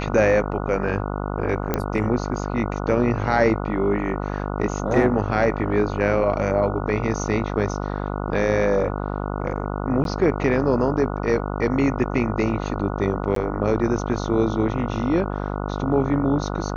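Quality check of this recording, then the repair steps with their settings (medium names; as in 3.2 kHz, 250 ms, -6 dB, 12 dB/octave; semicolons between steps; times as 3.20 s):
buzz 50 Hz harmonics 29 -27 dBFS
1.74 s: pop -7 dBFS
10.04–10.05 s: dropout 12 ms
13.35–13.36 s: dropout 13 ms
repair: de-click; de-hum 50 Hz, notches 29; interpolate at 10.04 s, 12 ms; interpolate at 13.35 s, 13 ms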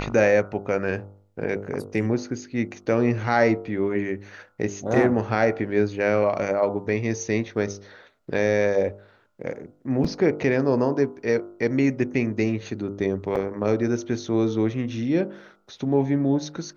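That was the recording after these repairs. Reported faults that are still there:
nothing left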